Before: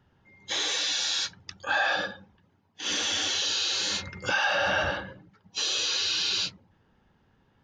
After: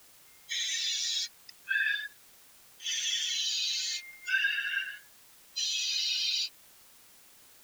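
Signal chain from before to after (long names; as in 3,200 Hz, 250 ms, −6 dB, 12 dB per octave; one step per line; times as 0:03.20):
spectral dynamics exaggerated over time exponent 2
Chebyshev high-pass filter 1,500 Hz, order 8
in parallel at −9 dB: bit-depth reduction 8 bits, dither triangular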